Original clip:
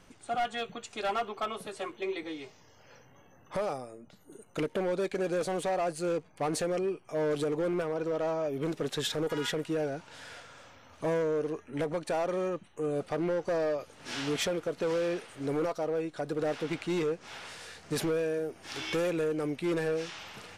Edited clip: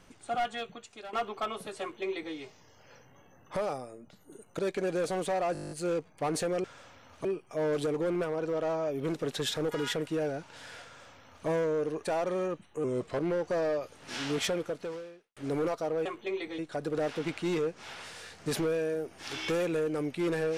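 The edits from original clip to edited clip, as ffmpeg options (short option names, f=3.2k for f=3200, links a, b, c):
-filter_complex "[0:a]asplit=20[a][b][c][d][e][f][g][h][i][j][k][l][m][n][o][p][q][r][s][t];[a]atrim=end=1.13,asetpts=PTS-STARTPTS,afade=t=out:st=0.41:d=0.72:silence=0.16788[u];[b]atrim=start=1.13:end=4.592,asetpts=PTS-STARTPTS,afade=t=in:d=0.004:c=hsin:silence=0.16788[v];[c]atrim=start=4.958:end=5.922[w];[d]atrim=start=5.898:end=5.922[x];[e]atrim=start=5.898:end=5.922[y];[f]atrim=start=5.898:end=5.922[z];[g]atrim=start=5.898:end=5.922[aa];[h]atrim=start=5.898:end=5.922[ab];[i]atrim=start=5.898:end=5.922[ac];[j]atrim=start=5.898:end=5.922[ad];[k]atrim=start=5.898:end=5.922[ae];[l]atrim=start=5.898:end=6.832[af];[m]atrim=start=10.438:end=11.052[ag];[n]atrim=start=6.828:end=11.612[ah];[o]atrim=start=12.048:end=12.864[ai];[p]atrim=start=12.86:end=13.16,asetpts=PTS-STARTPTS,asetrate=38367,aresample=44100[aj];[q]atrim=start=13.156:end=15.34,asetpts=PTS-STARTPTS,afade=t=out:st=1.454:d=0.73:c=qua[ak];[r]atrim=start=15.34:end=16.032,asetpts=PTS-STARTPTS,afade=t=in:d=0.004:c=hsin[al];[s]atrim=start=1.808:end=2.342[am];[t]atrim=start=16.028[an];[u][v]concat=n=2:v=0:a=1[ao];[ao][w]acrossfade=d=0.004:c1=hsin:c2=hsin[ap];[ap][x]acrossfade=d=0.004:c1=hsin:c2=hsin[aq];[aq][y]acrossfade=d=0.004:c1=hsin:c2=hsin[ar];[ar][z]acrossfade=d=0.004:c1=hsin:c2=hsin[as];[as][aa]acrossfade=d=0.004:c1=hsin:c2=hsin[at];[at][ab]acrossfade=d=0.004:c1=hsin:c2=hsin[au];[au][ac]acrossfade=d=0.004:c1=hsin:c2=hsin[av];[av][ad]acrossfade=d=0.004:c1=hsin:c2=hsin[aw];[aw][ae]acrossfade=d=0.004:c1=hsin:c2=hsin[ax];[ax][af]acrossfade=d=0.004:c1=hsin:c2=hsin[ay];[ay][ag]acrossfade=d=0.004:c1=hsin:c2=hsin[az];[az][ah]acrossfade=d=0.004:c1=hsin:c2=hsin[ba];[ba][ai]acrossfade=d=0.004:c1=hsin:c2=hsin[bb];[bb][aj]acrossfade=d=0.004:c1=hsin:c2=hsin[bc];[ak][al]concat=n=2:v=0:a=1[bd];[bc][bd]acrossfade=d=0.004:c1=hsin:c2=hsin[be];[be][am]acrossfade=d=0.004:c1=hsin:c2=hsin[bf];[bf][an]acrossfade=d=0.004:c1=hsin:c2=hsin"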